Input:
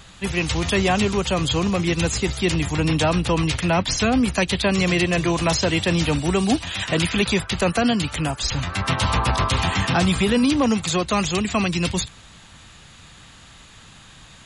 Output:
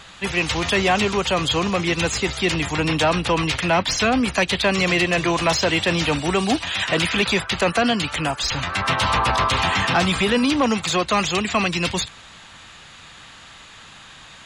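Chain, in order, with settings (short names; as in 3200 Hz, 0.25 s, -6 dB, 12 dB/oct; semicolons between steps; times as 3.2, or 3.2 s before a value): overdrive pedal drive 11 dB, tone 3600 Hz, clips at -8 dBFS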